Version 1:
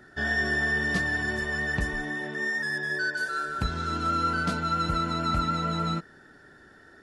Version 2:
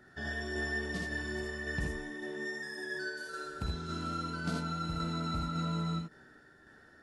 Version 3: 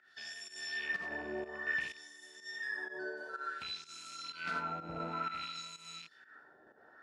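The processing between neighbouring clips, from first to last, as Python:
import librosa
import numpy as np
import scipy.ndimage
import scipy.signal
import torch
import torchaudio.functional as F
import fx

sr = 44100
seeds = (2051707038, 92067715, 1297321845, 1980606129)

y1 = fx.room_early_taps(x, sr, ms=(49, 65, 78), db=(-7.0, -4.5, -4.0))
y1 = fx.dynamic_eq(y1, sr, hz=1600.0, q=0.86, threshold_db=-38.0, ratio=4.0, max_db=-6)
y1 = fx.tremolo_shape(y1, sr, shape='saw_down', hz=1.8, depth_pct=35)
y1 = y1 * 10.0 ** (-7.0 / 20.0)
y2 = fx.rattle_buzz(y1, sr, strikes_db=-41.0, level_db=-38.0)
y2 = fx.filter_lfo_bandpass(y2, sr, shape='sine', hz=0.56, low_hz=610.0, high_hz=7600.0, q=1.7)
y2 = fx.volume_shaper(y2, sr, bpm=125, per_beat=1, depth_db=-13, release_ms=159.0, shape='fast start')
y2 = y2 * 10.0 ** (6.5 / 20.0)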